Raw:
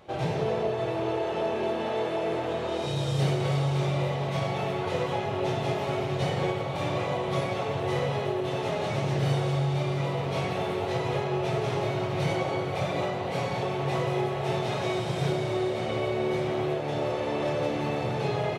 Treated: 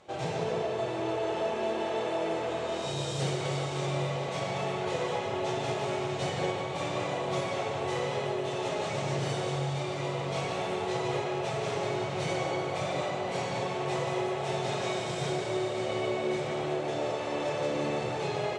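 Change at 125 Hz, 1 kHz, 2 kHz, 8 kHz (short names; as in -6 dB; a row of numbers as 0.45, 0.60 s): -7.0, -2.0, -1.5, +3.5 dB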